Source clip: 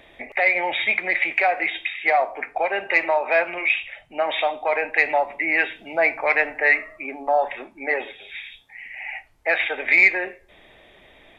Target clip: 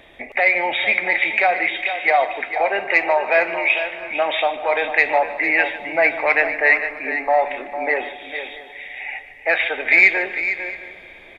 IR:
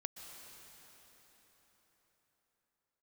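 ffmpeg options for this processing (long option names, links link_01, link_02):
-filter_complex "[0:a]aecho=1:1:452|668:0.316|0.1,asplit=2[link_01][link_02];[1:a]atrim=start_sample=2205,adelay=149[link_03];[link_02][link_03]afir=irnorm=-1:irlink=0,volume=-11.5dB[link_04];[link_01][link_04]amix=inputs=2:normalize=0,volume=2.5dB"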